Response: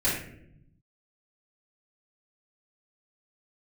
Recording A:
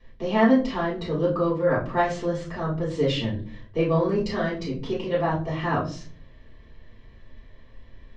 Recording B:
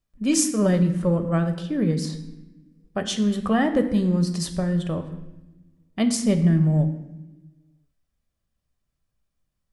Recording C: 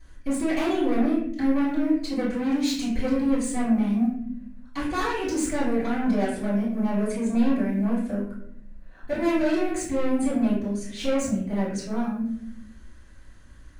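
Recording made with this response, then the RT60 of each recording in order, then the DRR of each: C; non-exponential decay, 1.0 s, 0.70 s; −8.5, 7.0, −10.0 decibels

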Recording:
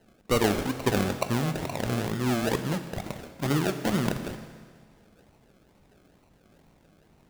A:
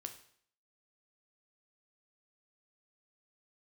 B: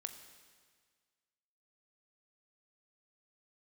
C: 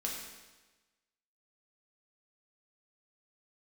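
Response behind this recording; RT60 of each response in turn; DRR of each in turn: B; 0.60, 1.7, 1.2 seconds; 5.5, 7.5, −2.5 decibels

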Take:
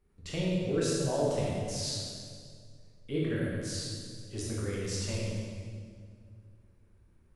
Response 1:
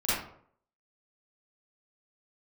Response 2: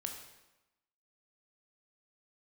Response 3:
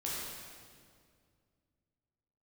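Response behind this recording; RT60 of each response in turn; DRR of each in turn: 3; 0.60, 1.0, 2.1 seconds; −12.0, 2.5, −6.5 decibels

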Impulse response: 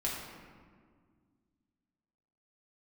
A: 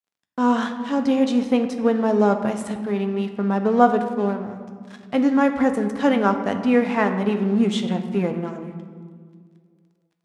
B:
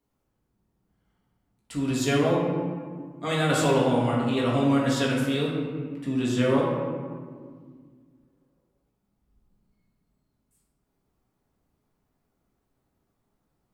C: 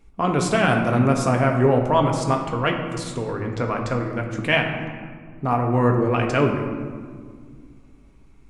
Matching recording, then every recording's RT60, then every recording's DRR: B; 1.9, 1.9, 1.9 seconds; 6.0, −5.0, 2.0 decibels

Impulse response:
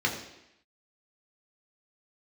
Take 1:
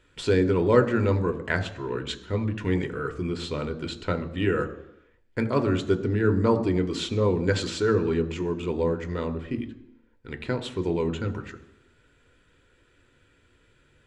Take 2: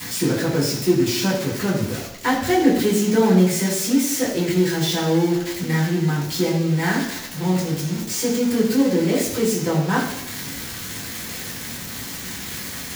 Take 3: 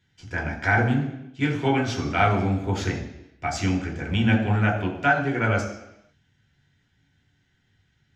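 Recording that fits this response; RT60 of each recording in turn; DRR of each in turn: 3; 0.85, 0.85, 0.85 seconds; 9.0, −8.0, −1.0 decibels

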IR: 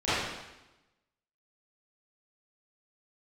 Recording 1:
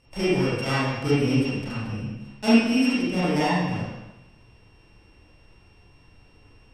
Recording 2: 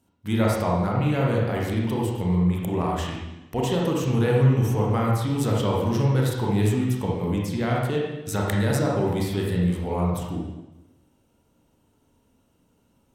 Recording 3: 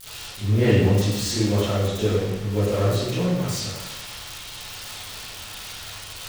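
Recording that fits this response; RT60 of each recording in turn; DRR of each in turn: 3; 1.0, 1.0, 1.0 seconds; −10.5, −3.0, −17.0 decibels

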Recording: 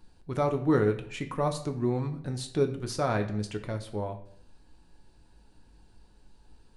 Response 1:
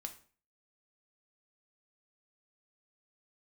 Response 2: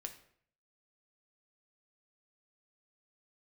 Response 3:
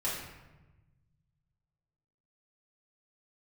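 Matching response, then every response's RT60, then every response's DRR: 2; 0.40, 0.60, 1.1 seconds; 5.0, 5.0, −9.0 decibels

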